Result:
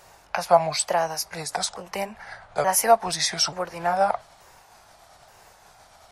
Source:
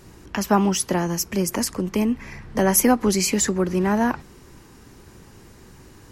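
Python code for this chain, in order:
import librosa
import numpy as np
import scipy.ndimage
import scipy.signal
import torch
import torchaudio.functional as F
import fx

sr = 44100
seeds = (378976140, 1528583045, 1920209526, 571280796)

y = fx.pitch_ramps(x, sr, semitones=-5.0, every_ms=881)
y = fx.low_shelf_res(y, sr, hz=440.0, db=-13.5, q=3.0)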